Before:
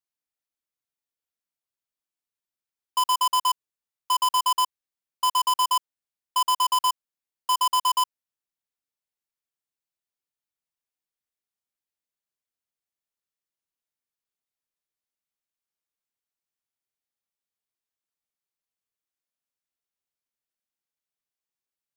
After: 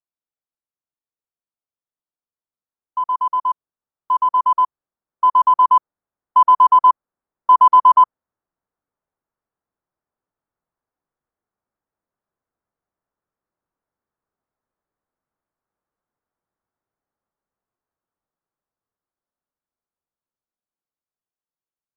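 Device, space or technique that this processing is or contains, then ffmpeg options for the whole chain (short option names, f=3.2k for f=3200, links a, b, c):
action camera in a waterproof case: -af "lowpass=f=1.4k:w=0.5412,lowpass=f=1.4k:w=1.3066,dynaudnorm=f=910:g=11:m=16dB,volume=-1dB" -ar 22050 -c:a aac -b:a 64k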